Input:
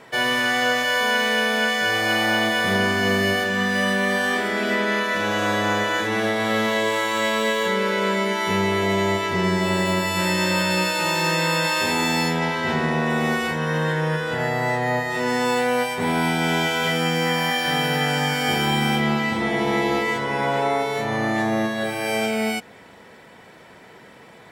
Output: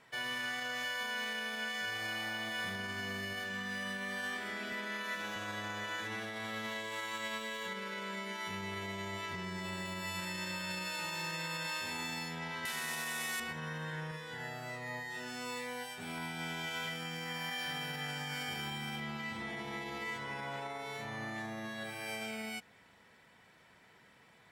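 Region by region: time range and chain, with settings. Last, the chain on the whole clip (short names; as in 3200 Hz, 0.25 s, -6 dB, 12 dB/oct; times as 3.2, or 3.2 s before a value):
4.72–5.36 HPF 130 Hz 24 dB/oct + high shelf 10000 Hz +6 dB
12.65–13.4 delta modulation 64 kbps, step -29.5 dBFS + tilt +4 dB/oct
14.11–16.18 low shelf 140 Hz -9 dB + cascading phaser falling 1.4 Hz
whole clip: high shelf 2100 Hz -8 dB; limiter -17 dBFS; passive tone stack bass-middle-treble 5-5-5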